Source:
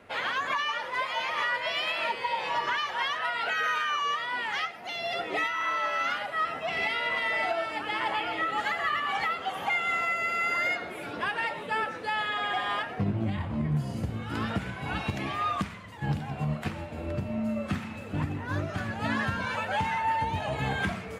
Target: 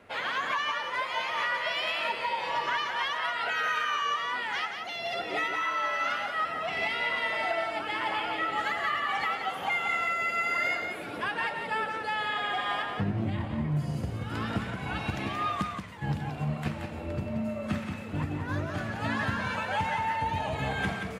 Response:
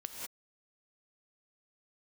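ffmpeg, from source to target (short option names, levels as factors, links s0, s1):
-af "aecho=1:1:178:0.501,volume=0.841"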